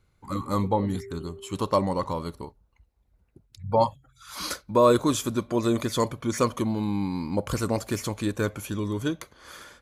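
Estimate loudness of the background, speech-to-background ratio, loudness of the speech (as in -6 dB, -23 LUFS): -46.0 LUFS, 19.0 dB, -27.0 LUFS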